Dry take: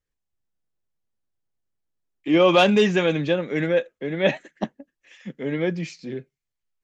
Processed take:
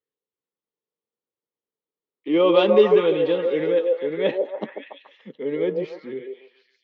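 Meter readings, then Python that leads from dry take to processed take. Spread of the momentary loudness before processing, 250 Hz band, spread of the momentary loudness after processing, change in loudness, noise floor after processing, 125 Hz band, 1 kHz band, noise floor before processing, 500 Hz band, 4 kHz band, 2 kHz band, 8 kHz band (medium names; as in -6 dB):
19 LU, -2.5 dB, 19 LU, +1.0 dB, under -85 dBFS, -9.0 dB, -3.0 dB, -84 dBFS, +3.5 dB, -4.0 dB, -7.0 dB, no reading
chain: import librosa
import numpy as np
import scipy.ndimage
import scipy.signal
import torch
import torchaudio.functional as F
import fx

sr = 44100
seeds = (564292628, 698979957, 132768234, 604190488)

y = fx.cabinet(x, sr, low_hz=260.0, low_slope=12, high_hz=3600.0, hz=(450.0, 690.0, 1600.0, 2500.0), db=(8, -9, -10, -7))
y = fx.echo_stepped(y, sr, ms=143, hz=520.0, octaves=0.7, feedback_pct=70, wet_db=-1.0)
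y = y * librosa.db_to_amplitude(-1.0)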